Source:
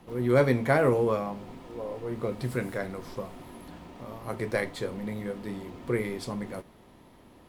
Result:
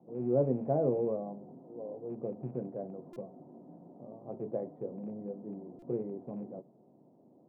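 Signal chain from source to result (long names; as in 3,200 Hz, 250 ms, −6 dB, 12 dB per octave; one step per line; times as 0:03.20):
loose part that buzzes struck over −33 dBFS, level −19 dBFS
elliptic band-pass filter 140–710 Hz, stop band 80 dB
buffer that repeats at 0:03.13/0:05.79, samples 128, times 10
level −5 dB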